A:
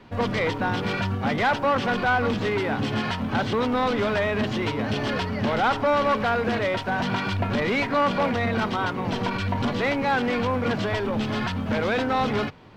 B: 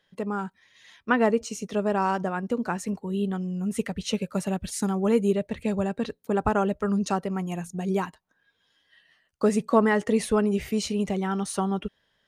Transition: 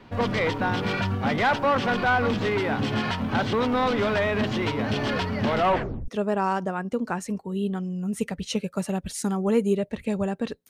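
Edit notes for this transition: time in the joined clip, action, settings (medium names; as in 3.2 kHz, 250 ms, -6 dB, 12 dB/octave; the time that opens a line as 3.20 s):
A
5.57 s: tape stop 0.51 s
6.08 s: go over to B from 1.66 s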